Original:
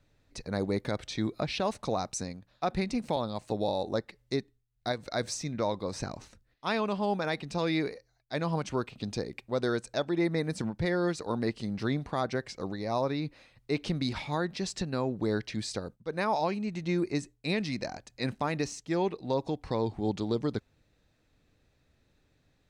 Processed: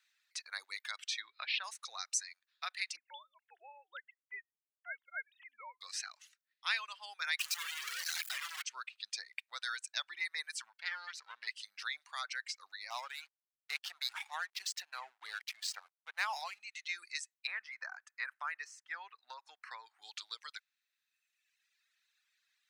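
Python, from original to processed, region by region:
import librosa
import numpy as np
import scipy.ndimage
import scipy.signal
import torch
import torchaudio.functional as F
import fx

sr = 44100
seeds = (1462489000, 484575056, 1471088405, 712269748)

y = fx.chain(x, sr, fx.lowpass(hz=4000.0, slope=24),
    fx.band_squash(depth_pct=40), at=(1.2, 1.64))
y = fx.chain(y, sr, fx.sine_speech(),
    fx.notch_comb(f0_hz=1200.0),
    fx.upward_expand(threshold_db=-39.0, expansion=1.5), at=(2.96, 5.81))
y = fx.chain(y, sr, fx.clip_1bit(),
    fx.high_shelf(hz=7000.0, db=-4.5), at=(7.39, 8.62))
y = fx.chain(y, sr, fx.halfwave_gain(db=-12.0),
    fx.lowpass(hz=5700.0, slope=12), at=(10.8, 11.47))
y = fx.chain(y, sr, fx.backlash(play_db=-35.5),
    fx.peak_eq(hz=770.0, db=10.0, octaves=0.72), at=(12.9, 16.6))
y = fx.chain(y, sr, fx.high_shelf_res(hz=2300.0, db=-14.0, q=1.5),
    fx.band_squash(depth_pct=70), at=(17.47, 20.02))
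y = fx.dereverb_blind(y, sr, rt60_s=1.7)
y = scipy.signal.sosfilt(scipy.signal.butter(4, 1500.0, 'highpass', fs=sr, output='sos'), y)
y = F.gain(torch.from_numpy(y), 2.5).numpy()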